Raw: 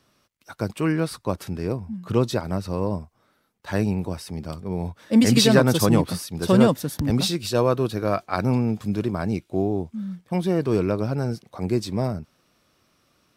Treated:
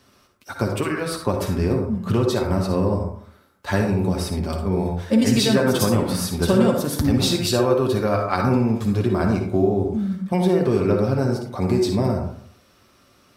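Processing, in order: compression 4:1, threshold -24 dBFS, peak gain reduction 12 dB; comb of notches 160 Hz; reverberation RT60 0.60 s, pre-delay 48 ms, DRR 3 dB; trim +8 dB

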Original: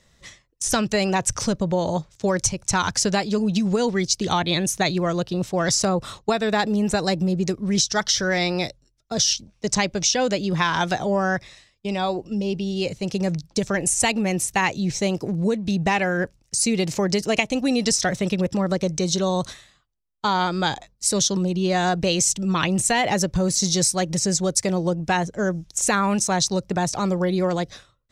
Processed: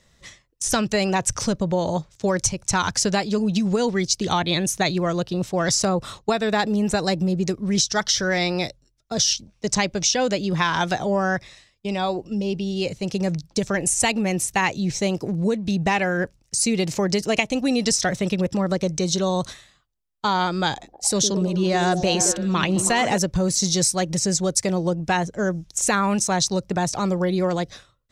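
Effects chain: 20.72–23.18 s: repeats whose band climbs or falls 108 ms, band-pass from 300 Hz, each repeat 0.7 oct, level -3 dB

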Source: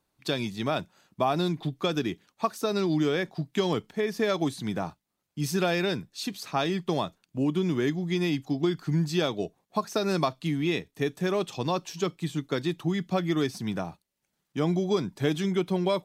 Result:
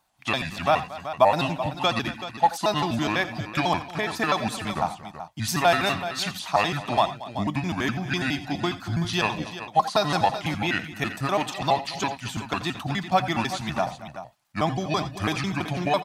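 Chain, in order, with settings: pitch shift switched off and on -5 st, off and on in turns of 83 ms; resonant low shelf 570 Hz -7 dB, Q 3; multi-tap echo 84/88/229/380 ms -16/-19/-17/-12 dB; trim +7 dB

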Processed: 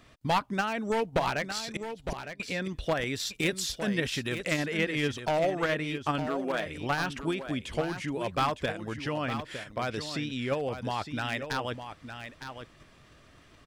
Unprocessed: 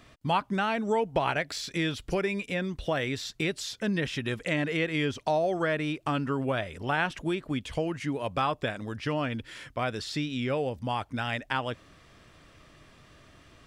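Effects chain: one-sided wavefolder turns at -21.5 dBFS; 3.06–4.29 s: treble shelf 7.9 kHz +10 dB; 6.26–6.66 s: brick-wall FIR high-pass 160 Hz; in parallel at +2.5 dB: level held to a coarse grid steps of 9 dB; 1.76–2.40 s: on the sum: inverted gate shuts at -18 dBFS, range -28 dB; harmonic-percussive split harmonic -3 dB; on a send: delay 909 ms -9.5 dB; on the sum: trim -4.5 dB

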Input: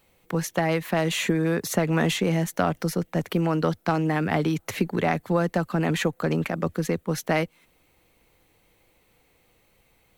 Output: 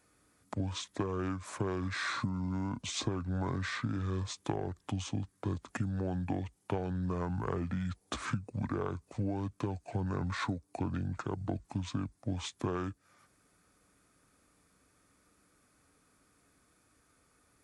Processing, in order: compression, threshold -26 dBFS, peak gain reduction 9 dB; speed mistake 78 rpm record played at 45 rpm; high-pass 51 Hz; trim -5 dB

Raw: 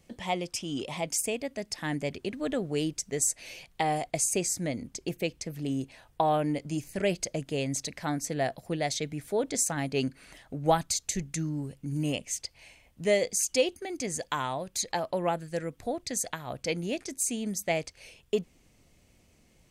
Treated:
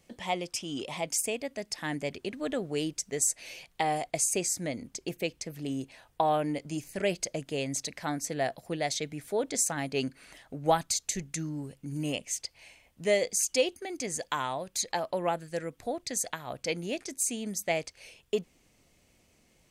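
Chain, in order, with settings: bass shelf 220 Hz -6.5 dB

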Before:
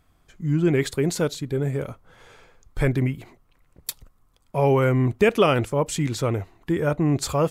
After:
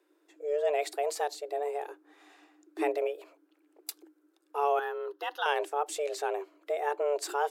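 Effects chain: frequency shift +290 Hz; 4.79–5.46 s: static phaser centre 2.3 kHz, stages 6; trim -8.5 dB

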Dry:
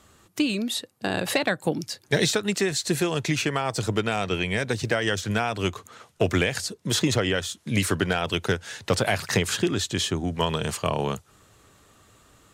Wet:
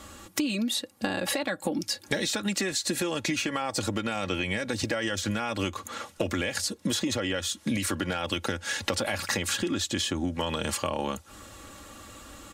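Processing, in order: comb 3.6 ms, depth 69%; peak limiter -15 dBFS, peak gain reduction 8 dB; compression 10:1, threshold -34 dBFS, peak gain reduction 14.5 dB; trim +8.5 dB

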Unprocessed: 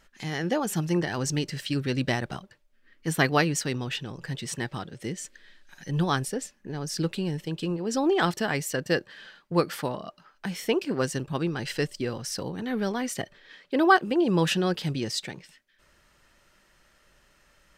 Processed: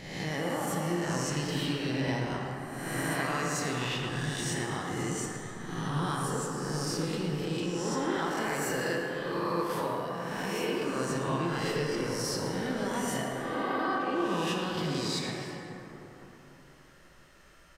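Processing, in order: reverse spectral sustain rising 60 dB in 0.98 s; dynamic bell 1 kHz, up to +6 dB, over -41 dBFS, Q 4; compression 5:1, threshold -30 dBFS, peak gain reduction 18 dB; speakerphone echo 110 ms, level -7 dB; plate-style reverb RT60 3.9 s, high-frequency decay 0.35×, DRR -0.5 dB; trim -2.5 dB

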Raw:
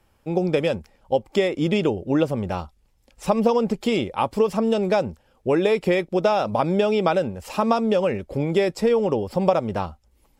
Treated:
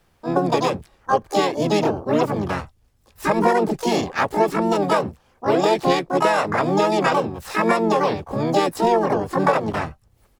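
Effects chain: Chebyshev shaper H 5 -31 dB, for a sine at -4 dBFS; harmony voices -4 st -6 dB, +7 st -2 dB, +12 st -2 dB; trim -3 dB

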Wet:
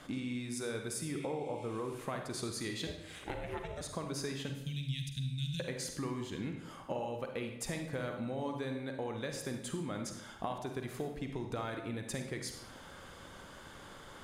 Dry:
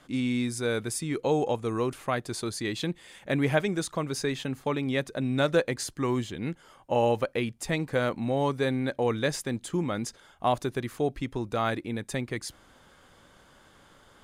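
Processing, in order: 1.13–1.93 s: spectral replace 2.1–12 kHz both; 4.49–5.60 s: elliptic band-stop 160–3000 Hz, stop band 50 dB; compression 8:1, threshold -41 dBFS, peak gain reduction 21.5 dB; 2.87–3.81 s: ring modulator 250 Hz; on a send: reverberation RT60 0.90 s, pre-delay 40 ms, DRR 4 dB; on the sum: trim +4 dB

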